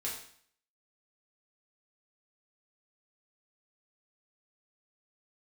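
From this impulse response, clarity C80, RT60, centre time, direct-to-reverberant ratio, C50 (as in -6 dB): 8.0 dB, 0.55 s, 37 ms, -5.5 dB, 5.0 dB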